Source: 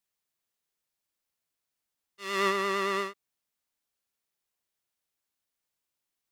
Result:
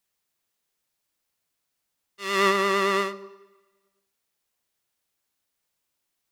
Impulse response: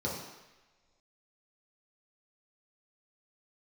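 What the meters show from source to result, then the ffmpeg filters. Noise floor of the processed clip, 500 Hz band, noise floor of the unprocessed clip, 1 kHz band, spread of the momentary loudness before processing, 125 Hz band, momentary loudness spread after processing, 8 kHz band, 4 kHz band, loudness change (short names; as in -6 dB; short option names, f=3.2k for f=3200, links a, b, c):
-80 dBFS, +6.5 dB, under -85 dBFS, +6.0 dB, 11 LU, n/a, 14 LU, +6.0 dB, +6.0 dB, +6.0 dB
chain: -filter_complex "[0:a]asplit=2[a][b];[1:a]atrim=start_sample=2205,adelay=81[c];[b][c]afir=irnorm=-1:irlink=0,volume=-22dB[d];[a][d]amix=inputs=2:normalize=0,volume=6dB"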